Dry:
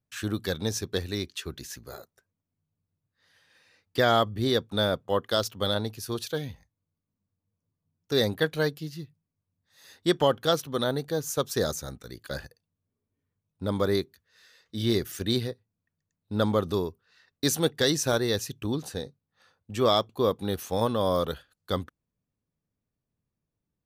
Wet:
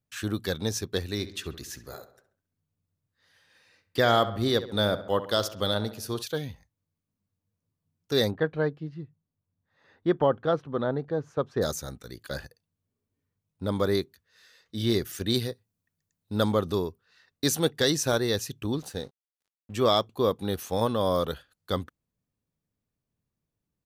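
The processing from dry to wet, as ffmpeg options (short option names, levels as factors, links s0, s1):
-filter_complex "[0:a]asplit=3[s0][s1][s2];[s0]afade=t=out:st=1.18:d=0.02[s3];[s1]asplit=2[s4][s5];[s5]adelay=67,lowpass=f=3400:p=1,volume=0.224,asplit=2[s6][s7];[s7]adelay=67,lowpass=f=3400:p=1,volume=0.52,asplit=2[s8][s9];[s9]adelay=67,lowpass=f=3400:p=1,volume=0.52,asplit=2[s10][s11];[s11]adelay=67,lowpass=f=3400:p=1,volume=0.52,asplit=2[s12][s13];[s13]adelay=67,lowpass=f=3400:p=1,volume=0.52[s14];[s4][s6][s8][s10][s12][s14]amix=inputs=6:normalize=0,afade=t=in:st=1.18:d=0.02,afade=t=out:st=6.21:d=0.02[s15];[s2]afade=t=in:st=6.21:d=0.02[s16];[s3][s15][s16]amix=inputs=3:normalize=0,asplit=3[s17][s18][s19];[s17]afade=t=out:st=8.3:d=0.02[s20];[s18]lowpass=1500,afade=t=in:st=8.3:d=0.02,afade=t=out:st=11.61:d=0.02[s21];[s19]afade=t=in:st=11.61:d=0.02[s22];[s20][s21][s22]amix=inputs=3:normalize=0,asettb=1/sr,asplit=3[s23][s24][s25];[s23]atrim=end=15.344[s26];[s24]atrim=start=15.34:end=16.53,asetpts=PTS-STARTPTS,afade=t=in:d=0.004:c=qsin,afade=t=out:st=1.186:d=0.004:c=qsin,highshelf=f=4700:g=7.5[s27];[s25]atrim=start=16.526[s28];[s26][s27]acrossfade=d=0.004:c1=hsin:c2=qsin[s29];[s29][s28]acrossfade=d=0.004:c1=qsin:c2=hsin,asettb=1/sr,asplit=3[s30][s31][s32];[s30]atrim=end=18.764[s33];[s31]atrim=start=18.76:end=19.75,asetpts=PTS-STARTPTS,afade=t=in:d=0.004:c=qsin,afade=t=out:st=0.986:d=0.004:c=qsin,aeval=exprs='sgn(val(0))*max(abs(val(0))-0.00211,0)':c=same[s34];[s32]atrim=start=19.746[s35];[s33][s34]acrossfade=d=0.004:c1=hsin:c2=qsin[s36];[s36][s35]acrossfade=d=0.004:c1=qsin:c2=hsin"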